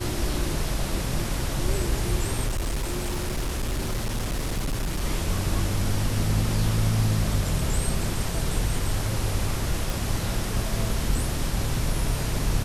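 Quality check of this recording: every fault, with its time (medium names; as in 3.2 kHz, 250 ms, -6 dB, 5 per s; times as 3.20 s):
2.47–5.01 s: clipped -23 dBFS
9.90 s: pop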